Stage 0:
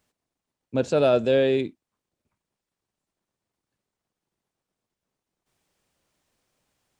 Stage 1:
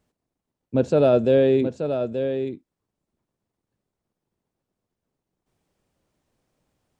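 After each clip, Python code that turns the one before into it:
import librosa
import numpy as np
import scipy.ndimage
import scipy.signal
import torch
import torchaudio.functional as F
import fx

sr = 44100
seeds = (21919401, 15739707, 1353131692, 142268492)

y = fx.tilt_shelf(x, sr, db=5.5, hz=880.0)
y = y + 10.0 ** (-8.0 / 20.0) * np.pad(y, (int(879 * sr / 1000.0), 0))[:len(y)]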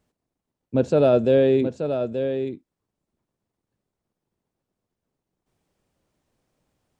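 y = x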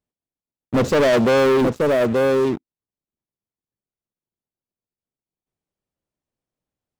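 y = fx.leveller(x, sr, passes=5)
y = y * librosa.db_to_amplitude(-5.5)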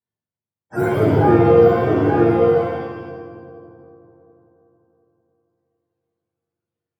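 y = fx.octave_mirror(x, sr, pivot_hz=430.0)
y = fx.echo_split(y, sr, split_hz=440.0, low_ms=363, high_ms=86, feedback_pct=52, wet_db=-13.5)
y = fx.rev_shimmer(y, sr, seeds[0], rt60_s=1.1, semitones=7, shimmer_db=-8, drr_db=-10.0)
y = y * librosa.db_to_amplitude(-8.5)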